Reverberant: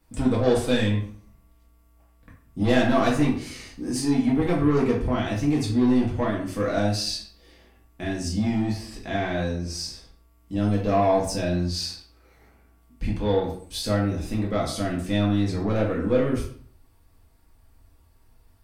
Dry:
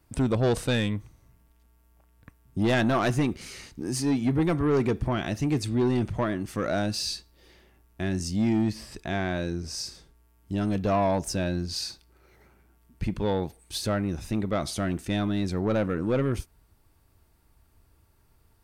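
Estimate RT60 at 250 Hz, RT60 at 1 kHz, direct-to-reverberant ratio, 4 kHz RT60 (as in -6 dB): 0.70 s, 0.50 s, -5.0 dB, 0.40 s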